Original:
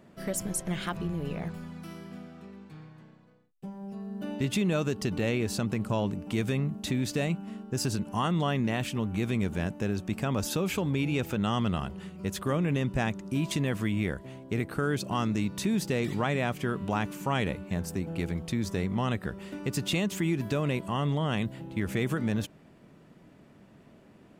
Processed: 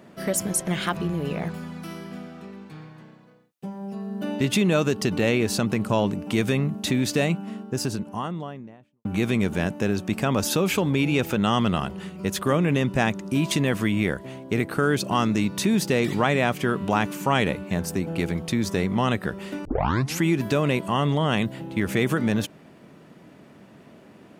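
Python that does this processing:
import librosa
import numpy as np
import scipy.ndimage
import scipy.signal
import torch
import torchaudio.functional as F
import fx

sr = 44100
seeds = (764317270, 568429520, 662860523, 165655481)

y = fx.studio_fade_out(x, sr, start_s=7.22, length_s=1.83)
y = fx.edit(y, sr, fx.tape_start(start_s=19.65, length_s=0.58), tone=tone)
y = fx.highpass(y, sr, hz=160.0, slope=6)
y = fx.notch(y, sr, hz=7600.0, q=26.0)
y = F.gain(torch.from_numpy(y), 8.0).numpy()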